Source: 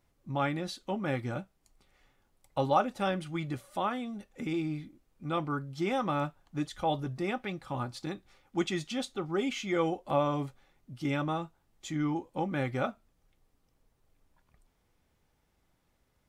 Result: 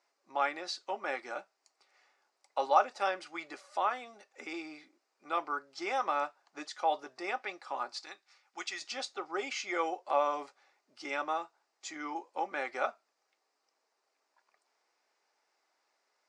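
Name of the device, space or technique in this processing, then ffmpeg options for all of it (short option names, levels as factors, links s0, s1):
phone speaker on a table: -filter_complex "[0:a]highpass=f=460:w=0.5412,highpass=f=460:w=1.3066,equalizer=f=510:t=q:w=4:g=-6,equalizer=f=3300:t=q:w=4:g=-8,equalizer=f=4900:t=q:w=4:g=6,lowpass=f=7500:w=0.5412,lowpass=f=7500:w=1.3066,asettb=1/sr,asplit=3[s0][s1][s2];[s0]atrim=end=8.014[s3];[s1]atrim=start=8.01:end=8.82,asetpts=PTS-STARTPTS,afade=t=in:d=0.004:c=qsin,afade=t=out:st=0.806:d=0.004:c=qsin,equalizer=f=340:w=0.41:g=-11.5[s4];[s2]atrim=start=8.816[s5];[s3][s4]acrossfade=d=0.004:c1=hsin:c2=qsin[s6];[s6][s5]acrossfade=d=0.004:c1=qsin:c2=hsin,volume=1.26"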